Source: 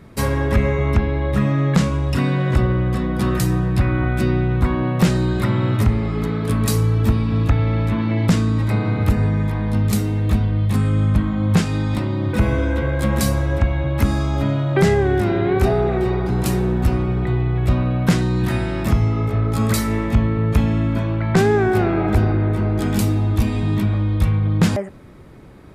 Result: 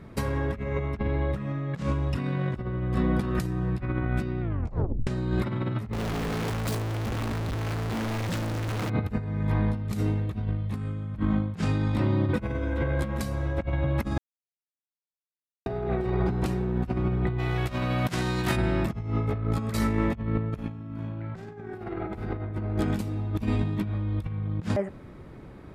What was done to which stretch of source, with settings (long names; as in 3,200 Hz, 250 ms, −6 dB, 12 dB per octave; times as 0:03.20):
0:04.41: tape stop 0.66 s
0:05.93–0:08.90: sign of each sample alone
0:14.18–0:15.66: silence
0:16.22–0:16.73: high-shelf EQ 8,400 Hz −6.5 dB
0:17.38–0:18.55: spectral envelope flattened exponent 0.6
0:20.47–0:22.41: thrown reverb, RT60 0.85 s, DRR 0.5 dB
whole clip: high-shelf EQ 4,700 Hz −9 dB; compressor whose output falls as the input rises −21 dBFS, ratio −0.5; level −6 dB